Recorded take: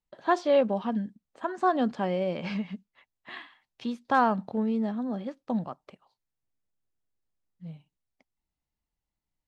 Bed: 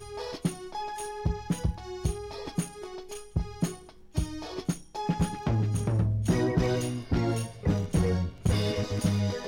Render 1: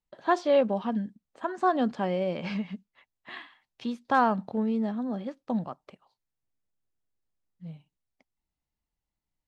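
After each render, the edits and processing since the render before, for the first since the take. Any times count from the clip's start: no audible change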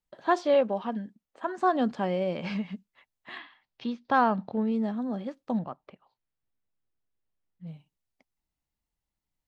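0.54–1.47 s: tone controls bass -7 dB, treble -4 dB; 3.38–4.72 s: low-pass 5.2 kHz 24 dB/octave; 5.58–7.67 s: low-pass 3.3 kHz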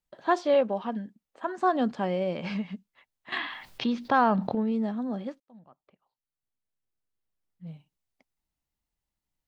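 3.32–4.55 s: level flattener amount 50%; 5.40–7.73 s: fade in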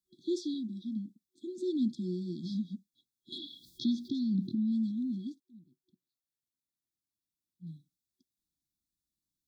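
FFT band-reject 370–3300 Hz; high-pass 170 Hz 6 dB/octave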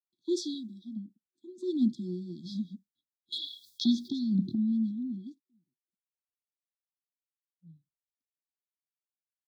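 three bands expanded up and down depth 100%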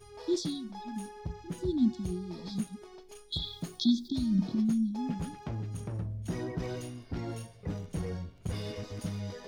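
add bed -10 dB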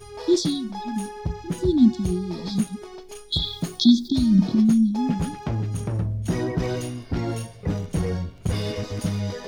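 trim +10.5 dB

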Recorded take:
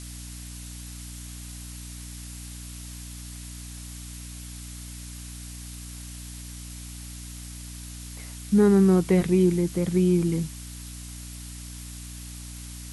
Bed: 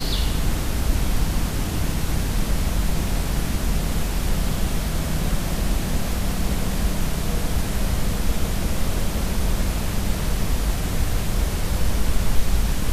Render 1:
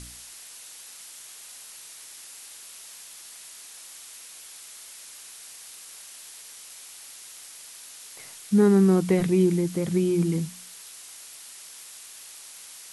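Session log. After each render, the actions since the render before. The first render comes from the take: de-hum 60 Hz, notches 5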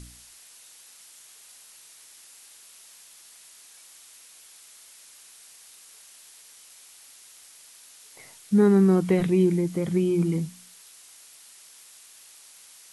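noise print and reduce 6 dB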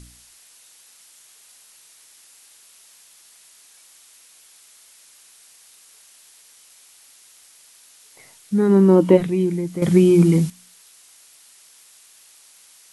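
8.68–9.16 s: small resonant body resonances 310/540/930/2900 Hz, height 12 dB -> 16 dB, ringing for 30 ms; 9.82–10.50 s: gain +10 dB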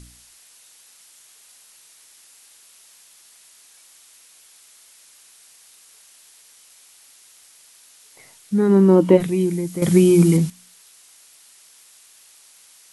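9.20–10.37 s: treble shelf 6 kHz +10.5 dB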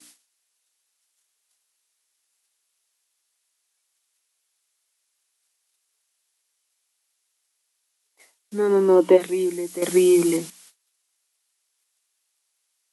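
gate -46 dBFS, range -24 dB; high-pass 300 Hz 24 dB/octave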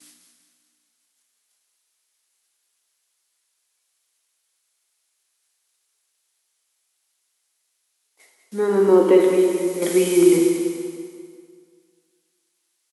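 feedback delay 195 ms, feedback 42%, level -9.5 dB; plate-style reverb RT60 2 s, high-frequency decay 0.85×, DRR 2 dB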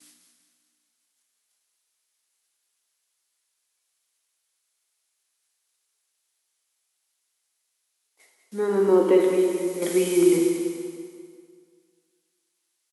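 trim -4 dB

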